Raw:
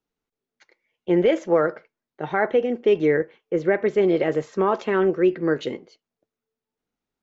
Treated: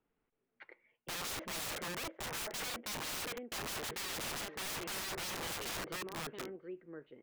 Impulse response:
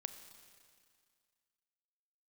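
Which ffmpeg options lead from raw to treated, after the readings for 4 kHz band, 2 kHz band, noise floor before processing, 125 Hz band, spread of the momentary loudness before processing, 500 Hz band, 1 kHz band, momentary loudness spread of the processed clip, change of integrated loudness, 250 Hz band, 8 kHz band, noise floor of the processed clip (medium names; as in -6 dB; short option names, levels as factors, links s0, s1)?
+1.5 dB, -11.0 dB, under -85 dBFS, -17.0 dB, 8 LU, -26.0 dB, -14.5 dB, 10 LU, -18.0 dB, -24.0 dB, no reading, -84 dBFS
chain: -af "aecho=1:1:728|1456:0.0944|0.0302,areverse,acompressor=threshold=0.0398:ratio=12,areverse,lowpass=f=2700:w=0.5412,lowpass=f=2700:w=1.3066,aeval=exprs='(mod(84.1*val(0)+1,2)-1)/84.1':c=same,volume=1.41"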